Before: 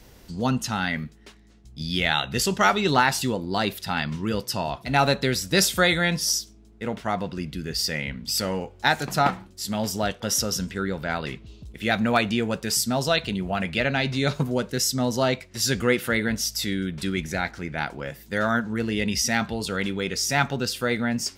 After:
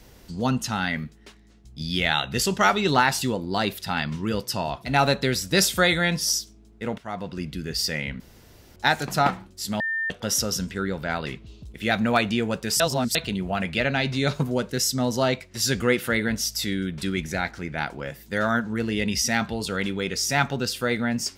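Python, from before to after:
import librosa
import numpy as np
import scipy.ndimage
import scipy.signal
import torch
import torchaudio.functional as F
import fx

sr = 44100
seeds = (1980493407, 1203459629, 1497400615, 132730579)

y = fx.edit(x, sr, fx.fade_in_from(start_s=6.98, length_s=0.45, floor_db=-12.5),
    fx.room_tone_fill(start_s=8.2, length_s=0.56),
    fx.bleep(start_s=9.8, length_s=0.3, hz=1800.0, db=-23.5),
    fx.reverse_span(start_s=12.8, length_s=0.35), tone=tone)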